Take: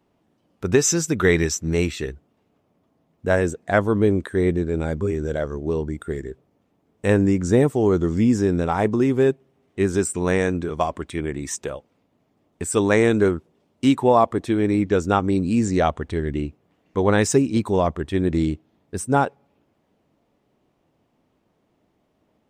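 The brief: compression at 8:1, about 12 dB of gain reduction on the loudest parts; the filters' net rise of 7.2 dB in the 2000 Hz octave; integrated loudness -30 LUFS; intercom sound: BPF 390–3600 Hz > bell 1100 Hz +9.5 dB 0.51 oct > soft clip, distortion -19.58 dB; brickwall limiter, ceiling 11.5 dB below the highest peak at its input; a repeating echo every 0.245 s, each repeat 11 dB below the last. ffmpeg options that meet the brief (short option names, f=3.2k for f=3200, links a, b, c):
-af "equalizer=f=2k:t=o:g=7.5,acompressor=threshold=-23dB:ratio=8,alimiter=limit=-21.5dB:level=0:latency=1,highpass=390,lowpass=3.6k,equalizer=f=1.1k:t=o:w=0.51:g=9.5,aecho=1:1:245|490|735:0.282|0.0789|0.0221,asoftclip=threshold=-21dB,volume=5.5dB"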